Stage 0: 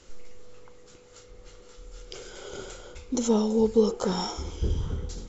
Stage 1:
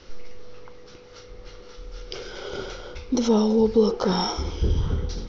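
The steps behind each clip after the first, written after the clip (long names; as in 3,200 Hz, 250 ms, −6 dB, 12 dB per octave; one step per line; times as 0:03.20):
Chebyshev low-pass filter 5,800 Hz, order 6
in parallel at +2.5 dB: brickwall limiter −22.5 dBFS, peak gain reduction 11.5 dB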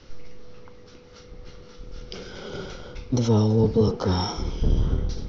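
sub-octave generator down 1 octave, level +3 dB
level −3 dB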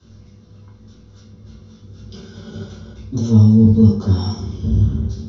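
convolution reverb RT60 0.45 s, pre-delay 3 ms, DRR −5.5 dB
level −15.5 dB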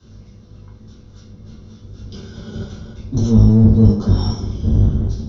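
sub-octave generator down 1 octave, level −3 dB
in parallel at −0.5 dB: brickwall limiter −9 dBFS, peak gain reduction 10 dB
on the sum: level −4.5 dB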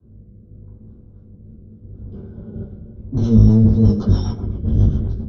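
rotating-speaker cabinet horn 0.8 Hz, later 7.5 Hz, at 0:03.00
low-pass that shuts in the quiet parts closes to 470 Hz, open at −9 dBFS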